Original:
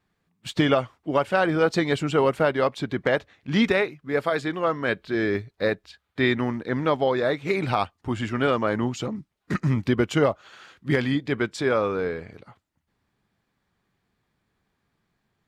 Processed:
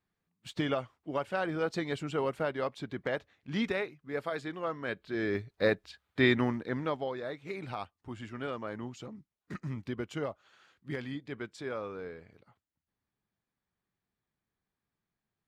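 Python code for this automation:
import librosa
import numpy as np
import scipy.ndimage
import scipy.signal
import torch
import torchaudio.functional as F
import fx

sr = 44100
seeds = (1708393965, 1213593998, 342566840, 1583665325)

y = fx.gain(x, sr, db=fx.line((4.98, -11.0), (5.67, -3.0), (6.42, -3.0), (7.19, -15.0)))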